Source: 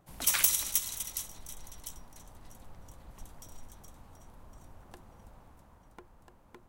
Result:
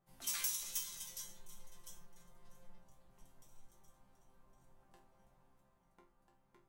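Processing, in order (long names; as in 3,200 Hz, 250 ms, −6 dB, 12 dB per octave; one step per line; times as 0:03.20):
0:00.63–0:02.79: comb filter 5.7 ms, depth 92%
dynamic equaliser 5,600 Hz, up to +5 dB, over −45 dBFS, Q 1.1
resonators tuned to a chord C3 sus4, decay 0.34 s
level +1 dB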